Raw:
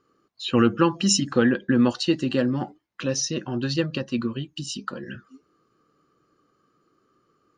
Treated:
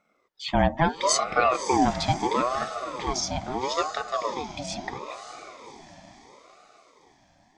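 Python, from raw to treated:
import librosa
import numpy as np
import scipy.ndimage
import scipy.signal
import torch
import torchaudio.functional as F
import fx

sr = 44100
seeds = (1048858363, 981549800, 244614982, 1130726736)

y = fx.echo_diffused(x, sr, ms=579, feedback_pct=51, wet_db=-10.0)
y = fx.ring_lfo(y, sr, carrier_hz=700.0, swing_pct=40, hz=0.75)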